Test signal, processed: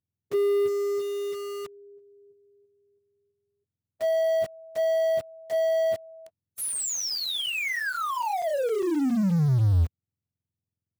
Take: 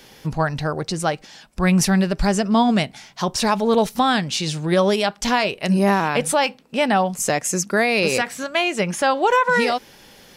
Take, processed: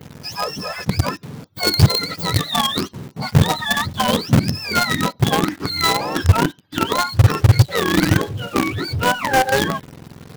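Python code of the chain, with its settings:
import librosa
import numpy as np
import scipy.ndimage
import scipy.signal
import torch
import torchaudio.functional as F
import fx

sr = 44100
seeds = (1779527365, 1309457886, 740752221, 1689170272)

p1 = fx.octave_mirror(x, sr, pivot_hz=890.0)
p2 = fx.quant_companded(p1, sr, bits=2)
p3 = p1 + (p2 * librosa.db_to_amplitude(-6.0))
y = p3 * librosa.db_to_amplitude(-3.5)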